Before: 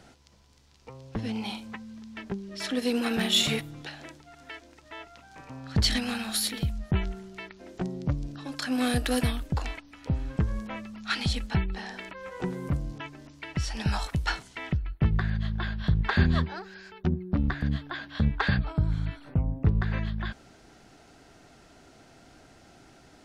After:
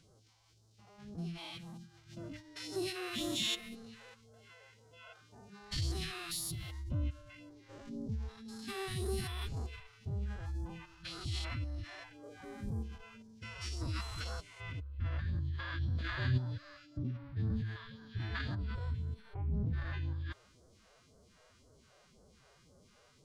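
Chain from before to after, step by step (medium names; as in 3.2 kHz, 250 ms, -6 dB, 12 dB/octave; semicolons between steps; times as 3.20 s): spectrogram pixelated in time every 200 ms; phase shifter stages 2, 1.9 Hz, lowest notch 150–2400 Hz; formant-preserving pitch shift +7.5 st; trim -6 dB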